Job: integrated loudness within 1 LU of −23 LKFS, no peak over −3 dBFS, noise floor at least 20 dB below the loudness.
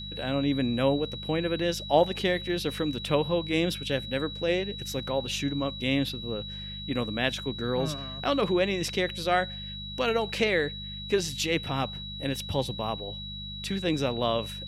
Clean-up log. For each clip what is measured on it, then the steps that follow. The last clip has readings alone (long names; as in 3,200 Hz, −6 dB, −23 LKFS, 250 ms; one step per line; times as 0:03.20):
mains hum 50 Hz; hum harmonics up to 200 Hz; level of the hum −40 dBFS; interfering tone 3,900 Hz; level of the tone −38 dBFS; integrated loudness −28.5 LKFS; sample peak −10.0 dBFS; target loudness −23.0 LKFS
→ hum removal 50 Hz, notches 4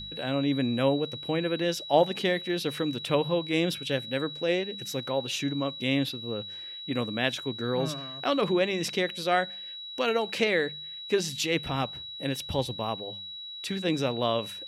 mains hum none found; interfering tone 3,900 Hz; level of the tone −38 dBFS
→ notch filter 3,900 Hz, Q 30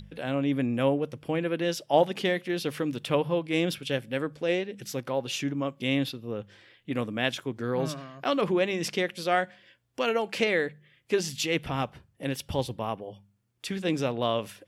interfering tone none found; integrated loudness −29.0 LKFS; sample peak −10.0 dBFS; target loudness −23.0 LKFS
→ level +6 dB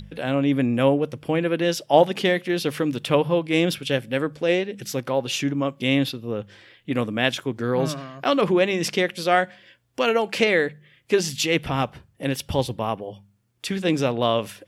integrated loudness −23.0 LKFS; sample peak −4.0 dBFS; background noise floor −63 dBFS